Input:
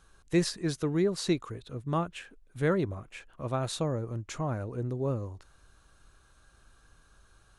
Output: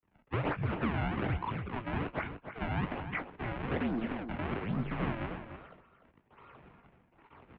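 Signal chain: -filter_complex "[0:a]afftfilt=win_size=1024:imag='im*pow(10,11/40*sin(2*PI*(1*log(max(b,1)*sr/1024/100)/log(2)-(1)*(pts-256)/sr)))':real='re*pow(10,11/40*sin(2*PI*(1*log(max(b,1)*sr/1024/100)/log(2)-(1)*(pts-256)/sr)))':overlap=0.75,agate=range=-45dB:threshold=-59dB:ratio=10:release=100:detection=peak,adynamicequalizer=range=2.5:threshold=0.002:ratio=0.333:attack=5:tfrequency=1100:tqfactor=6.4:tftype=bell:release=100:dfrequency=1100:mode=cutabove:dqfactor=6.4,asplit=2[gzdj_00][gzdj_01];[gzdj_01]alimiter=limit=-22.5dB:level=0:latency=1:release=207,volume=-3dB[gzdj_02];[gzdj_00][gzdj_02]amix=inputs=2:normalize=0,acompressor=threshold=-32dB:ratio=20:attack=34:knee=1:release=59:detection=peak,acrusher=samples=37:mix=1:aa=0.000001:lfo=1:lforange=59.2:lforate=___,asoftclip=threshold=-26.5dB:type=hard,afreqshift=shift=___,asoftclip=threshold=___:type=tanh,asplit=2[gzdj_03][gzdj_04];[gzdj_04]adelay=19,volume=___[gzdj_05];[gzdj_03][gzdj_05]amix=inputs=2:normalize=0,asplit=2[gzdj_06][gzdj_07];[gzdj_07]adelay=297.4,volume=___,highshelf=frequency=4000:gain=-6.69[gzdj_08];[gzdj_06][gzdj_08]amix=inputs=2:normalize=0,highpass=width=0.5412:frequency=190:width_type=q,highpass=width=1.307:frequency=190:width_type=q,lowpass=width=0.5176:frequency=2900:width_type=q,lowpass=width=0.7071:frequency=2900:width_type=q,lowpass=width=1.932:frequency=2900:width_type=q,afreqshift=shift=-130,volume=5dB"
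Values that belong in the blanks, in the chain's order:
1.2, -96, -28.5dB, -11.5dB, -9dB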